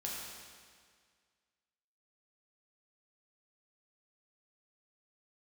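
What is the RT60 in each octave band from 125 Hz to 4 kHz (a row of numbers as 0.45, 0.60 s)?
1.9, 1.9, 1.9, 1.9, 1.8, 1.8 s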